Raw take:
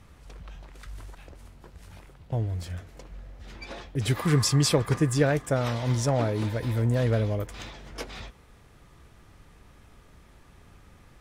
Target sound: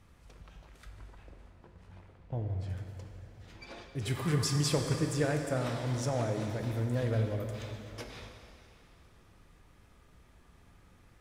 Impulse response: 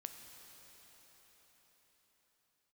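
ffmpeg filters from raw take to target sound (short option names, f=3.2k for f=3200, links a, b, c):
-filter_complex "[0:a]asettb=1/sr,asplit=3[a][b][c];[a]atrim=end=0.884[d];[b]atrim=start=0.88:end=2.69,asetpts=PTS-STARTPTS,afade=t=in:d=0.004:c=qsin,afade=t=out:st=1.806:d=0.004:c=qsin,aemphasis=mode=reproduction:type=75fm[e];[c]atrim=start=2.686[f];[d][e]acrossfade=d=0.004:c1=hsin:c2=qsin[g];[g][f]acrossfade=d=0.004:c1=qsin:c2=hsin[h];[1:a]atrim=start_sample=2205,asetrate=83790,aresample=44100[i];[h][i]afir=irnorm=-1:irlink=0,volume=3dB"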